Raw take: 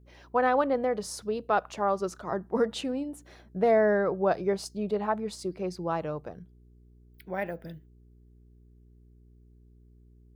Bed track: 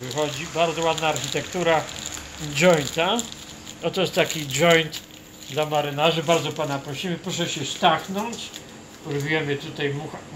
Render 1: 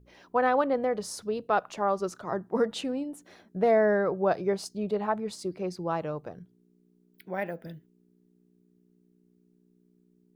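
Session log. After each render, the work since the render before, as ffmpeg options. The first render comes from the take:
ffmpeg -i in.wav -af "bandreject=frequency=60:width_type=h:width=4,bandreject=frequency=120:width_type=h:width=4" out.wav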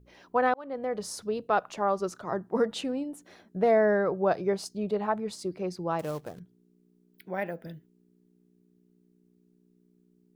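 ffmpeg -i in.wav -filter_complex "[0:a]asettb=1/sr,asplit=3[link_01][link_02][link_03];[link_01]atrim=end=5.994[link_04];[link_02]atrim=start=5.99:end=6.4,asetpts=PTS-STARTPTS,afade=type=in:duration=0.004:curve=qsin,afade=type=out:start_time=0.406:duration=0.004:curve=qsin,acrusher=bits=4:mode=log:mix=0:aa=0.000001[link_05];[link_03]atrim=start=6.396[link_06];[link_04][link_05]acrossfade=duration=0.004:curve1=hsin:curve2=qsin[link_07];[link_07][link_06]acrossfade=duration=0.004:curve1=qsin:curve2=hsin,asplit=2[link_08][link_09];[link_08]atrim=end=0.54,asetpts=PTS-STARTPTS,afade=type=out:start_time=0.536:duration=0.004:curve=hsin[link_10];[link_09]atrim=start=0.54,asetpts=PTS-STARTPTS,afade=type=in:duration=0.52[link_11];[link_10][link_11]concat=n=2:v=0:a=1" out.wav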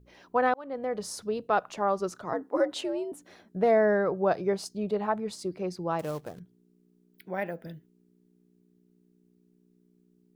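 ffmpeg -i in.wav -filter_complex "[0:a]asettb=1/sr,asplit=3[link_01][link_02][link_03];[link_01]atrim=end=2.334[link_04];[link_02]atrim=start=2.33:end=3.12,asetpts=PTS-STARTPTS,afade=type=in:duration=0.004:curve=qsin,afade=type=out:start_time=0.786:duration=0.004:curve=qsin,afreqshift=85[link_05];[link_03]atrim=start=3.116[link_06];[link_04][link_05]acrossfade=duration=0.004:curve1=hsin:curve2=qsin[link_07];[link_07][link_06]acrossfade=duration=0.004:curve1=qsin:curve2=hsin" out.wav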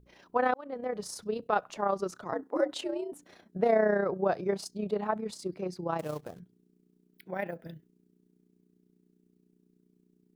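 ffmpeg -i in.wav -af "tremolo=f=30:d=0.571" out.wav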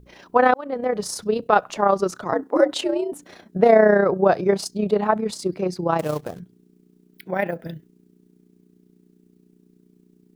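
ffmpeg -i in.wav -af "volume=11dB" out.wav

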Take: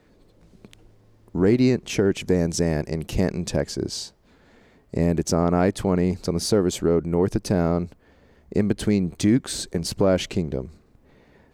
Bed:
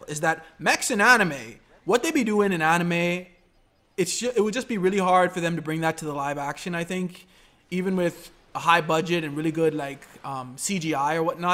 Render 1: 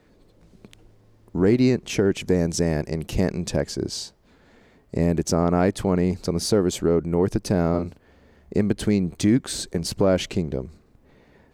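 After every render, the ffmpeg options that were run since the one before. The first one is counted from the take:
ffmpeg -i in.wav -filter_complex "[0:a]asettb=1/sr,asplit=3[link_01][link_02][link_03];[link_01]atrim=end=7.694[link_04];[link_02]atrim=start=7.69:end=8.57,asetpts=PTS-STARTPTS,afade=type=in:duration=0.004:curve=qsin,afade=type=out:start_time=0.876:duration=0.004:curve=qsin,asplit=2[link_05][link_06];[link_06]adelay=43,volume=-7dB[link_07];[link_05][link_07]amix=inputs=2:normalize=0,atrim=end_sample=38808[link_08];[link_03]atrim=start=8.566[link_09];[link_04][link_08]acrossfade=duration=0.004:curve1=hsin:curve2=qsin[link_10];[link_10][link_09]acrossfade=duration=0.004:curve1=qsin:curve2=hsin" out.wav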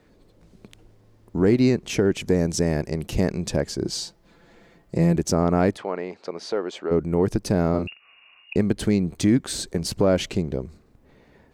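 ffmpeg -i in.wav -filter_complex "[0:a]asettb=1/sr,asplit=3[link_01][link_02][link_03];[link_01]atrim=end=3.844[link_04];[link_02]atrim=start=3.84:end=5.16,asetpts=PTS-STARTPTS,afade=type=in:duration=0.004:curve=qsin,afade=type=out:start_time=1.316:duration=0.004:curve=qsin,aecho=1:1:5.9:0.65,atrim=end_sample=58212[link_05];[link_03]atrim=start=5.156[link_06];[link_04][link_05]acrossfade=duration=0.004:curve1=hsin:curve2=qsin[link_07];[link_07][link_06]acrossfade=duration=0.004:curve1=qsin:curve2=hsin,asplit=3[link_08][link_09][link_10];[link_08]afade=type=out:start_time=5.76:duration=0.02[link_11];[link_09]highpass=530,lowpass=3000,afade=type=in:start_time=5.76:duration=0.02,afade=type=out:start_time=6.9:duration=0.02[link_12];[link_10]afade=type=in:start_time=6.9:duration=0.02[link_13];[link_11][link_12][link_13]amix=inputs=3:normalize=0,asettb=1/sr,asplit=3[link_14][link_15][link_16];[link_14]atrim=end=7.874[link_17];[link_15]atrim=start=7.87:end=8.56,asetpts=PTS-STARTPTS,afade=type=in:duration=0.004:curve=qsin,afade=type=out:start_time=0.686:duration=0.004:curve=qsin,lowpass=frequency=2500:width_type=q:width=0.5098,lowpass=frequency=2500:width_type=q:width=0.6013,lowpass=frequency=2500:width_type=q:width=0.9,lowpass=frequency=2500:width_type=q:width=2.563,afreqshift=-2900[link_18];[link_16]atrim=start=8.556[link_19];[link_17][link_18]acrossfade=duration=0.004:curve1=hsin:curve2=qsin[link_20];[link_20][link_19]acrossfade=duration=0.004:curve1=qsin:curve2=hsin" out.wav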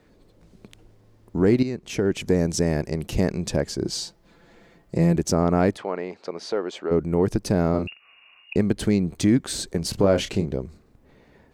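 ffmpeg -i in.wav -filter_complex "[0:a]asettb=1/sr,asplit=3[link_01][link_02][link_03];[link_01]atrim=end=9.904[link_04];[link_02]atrim=start=9.9:end=10.46,asetpts=PTS-STARTPTS,afade=type=in:duration=0.004:curve=qsin,afade=type=out:start_time=0.556:duration=0.004:curve=qsin,asplit=2[link_05][link_06];[link_06]adelay=30,volume=-8.5dB[link_07];[link_05][link_07]amix=inputs=2:normalize=0,atrim=end_sample=24696[link_08];[link_03]atrim=start=10.456[link_09];[link_04][link_08]acrossfade=duration=0.004:curve1=hsin:curve2=qsin[link_10];[link_10][link_09]acrossfade=duration=0.004:curve1=qsin:curve2=hsin,asplit=2[link_11][link_12];[link_11]atrim=end=1.63,asetpts=PTS-STARTPTS,afade=type=out:start_time=1.626:duration=0.004:curve=hsin:silence=0.237137[link_13];[link_12]atrim=start=1.63,asetpts=PTS-STARTPTS,afade=type=in:duration=0.59:silence=0.237137[link_14];[link_13][link_14]concat=n=2:v=0:a=1" out.wav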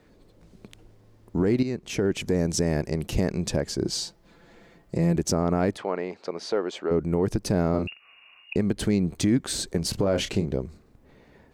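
ffmpeg -i in.wav -af "alimiter=limit=-13.5dB:level=0:latency=1:release=89" out.wav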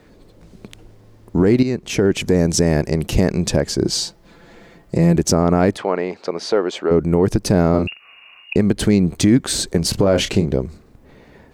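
ffmpeg -i in.wav -af "volume=8.5dB" out.wav

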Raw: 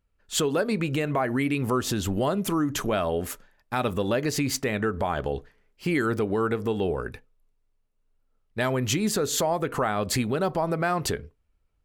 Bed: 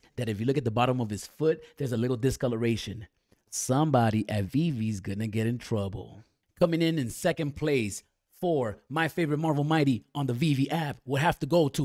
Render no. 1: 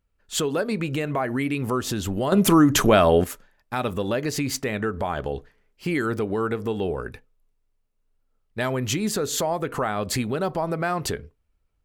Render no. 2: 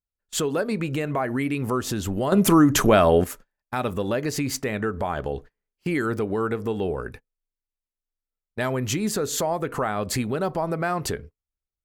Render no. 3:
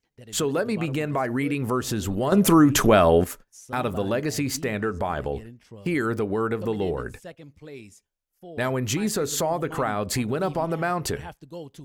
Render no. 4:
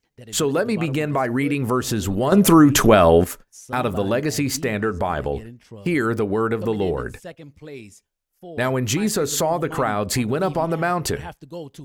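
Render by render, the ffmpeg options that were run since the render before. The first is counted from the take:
ffmpeg -i in.wav -filter_complex "[0:a]asplit=3[link_01][link_02][link_03];[link_01]atrim=end=2.322[link_04];[link_02]atrim=start=2.318:end=3.242,asetpts=PTS-STARTPTS,volume=9.5dB[link_05];[link_03]atrim=start=3.238[link_06];[link_04][link_05]acrossfade=duration=0.004:curve1=hsin:curve2=hsin[link_07];[link_07][link_06]acrossfade=duration=0.004:curve1=hsin:curve2=hsin" out.wav
ffmpeg -i in.wav -af "agate=range=-21dB:threshold=-40dB:ratio=16:detection=peak,equalizer=frequency=3400:width=1.5:gain=-3" out.wav
ffmpeg -i in.wav -i bed.wav -filter_complex "[1:a]volume=-15dB[link_01];[0:a][link_01]amix=inputs=2:normalize=0" out.wav
ffmpeg -i in.wav -af "volume=4dB,alimiter=limit=-3dB:level=0:latency=1" out.wav

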